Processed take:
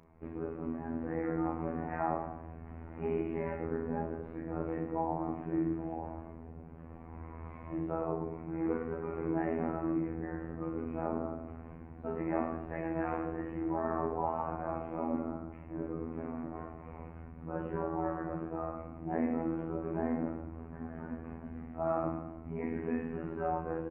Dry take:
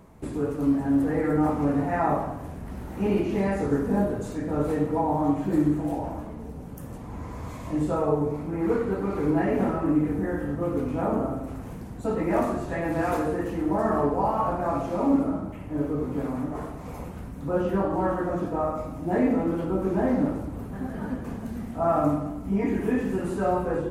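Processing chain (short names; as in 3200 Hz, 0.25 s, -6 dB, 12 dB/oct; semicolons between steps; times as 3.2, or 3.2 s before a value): Chebyshev low-pass 2400 Hz, order 4; robotiser 81.7 Hz; doubler 34 ms -12 dB; gain -7 dB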